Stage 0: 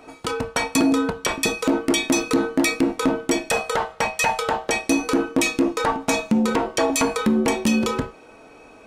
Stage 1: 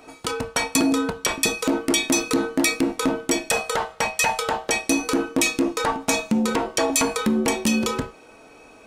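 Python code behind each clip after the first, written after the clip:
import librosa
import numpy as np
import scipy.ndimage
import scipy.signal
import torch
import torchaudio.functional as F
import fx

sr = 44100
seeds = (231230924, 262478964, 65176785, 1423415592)

y = fx.high_shelf(x, sr, hz=3600.0, db=6.5)
y = y * 10.0 ** (-2.0 / 20.0)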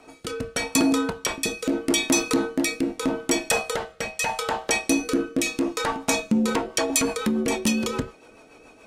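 y = fx.rotary_switch(x, sr, hz=0.8, then_hz=7.0, switch_at_s=6.12)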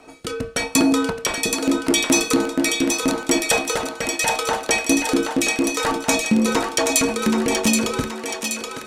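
y = fx.echo_thinned(x, sr, ms=776, feedback_pct=56, hz=620.0, wet_db=-4.0)
y = y * 10.0 ** (3.5 / 20.0)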